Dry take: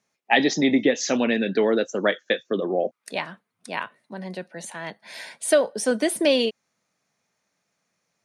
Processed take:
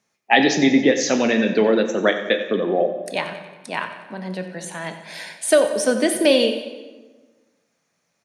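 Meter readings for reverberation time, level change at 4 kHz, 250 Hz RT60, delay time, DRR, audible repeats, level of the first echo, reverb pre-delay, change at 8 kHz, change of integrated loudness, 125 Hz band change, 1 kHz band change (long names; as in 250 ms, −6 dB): 1.3 s, +3.5 dB, 1.6 s, 91 ms, 6.5 dB, 5, −13.5 dB, 15 ms, +3.5 dB, +3.5 dB, +5.0 dB, +4.5 dB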